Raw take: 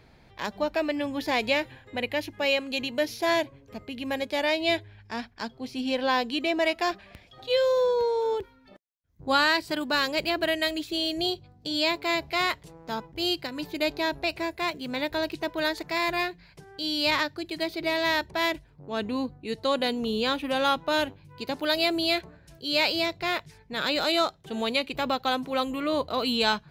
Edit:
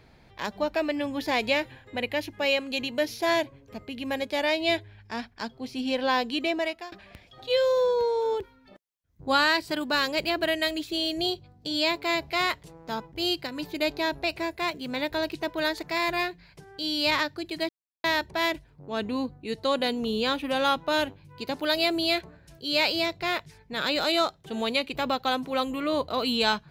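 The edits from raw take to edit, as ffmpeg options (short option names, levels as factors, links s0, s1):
-filter_complex "[0:a]asplit=4[s0][s1][s2][s3];[s0]atrim=end=6.92,asetpts=PTS-STARTPTS,afade=t=out:st=6.46:d=0.46:silence=0.0707946[s4];[s1]atrim=start=6.92:end=17.69,asetpts=PTS-STARTPTS,afade=t=in:d=0.004:c=hsin:silence=0.0707946,afade=t=out:st=10.766:d=0.004:c=hsin[s5];[s2]atrim=start=17.69:end=18.04,asetpts=PTS-STARTPTS,volume=0[s6];[s3]atrim=start=18.04,asetpts=PTS-STARTPTS,afade=t=in:d=0.004:c=hsin[s7];[s4][s5][s6][s7]concat=n=4:v=0:a=1"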